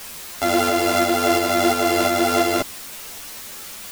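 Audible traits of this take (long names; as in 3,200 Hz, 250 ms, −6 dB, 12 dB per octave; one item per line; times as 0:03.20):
a buzz of ramps at a fixed pitch in blocks of 64 samples
tremolo saw up 2.9 Hz, depth 35%
a quantiser's noise floor 6 bits, dither triangular
a shimmering, thickened sound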